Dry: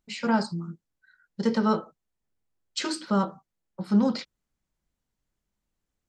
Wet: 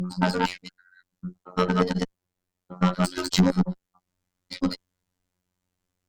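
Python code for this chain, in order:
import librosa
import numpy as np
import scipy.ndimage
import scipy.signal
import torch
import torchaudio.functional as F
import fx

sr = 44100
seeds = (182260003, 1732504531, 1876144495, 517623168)

y = fx.block_reorder(x, sr, ms=113.0, group=6)
y = fx.robotise(y, sr, hz=90.5)
y = fx.cheby_harmonics(y, sr, harmonics=(8,), levels_db=(-21,), full_scale_db=-9.0)
y = F.gain(torch.from_numpy(y), 6.0).numpy()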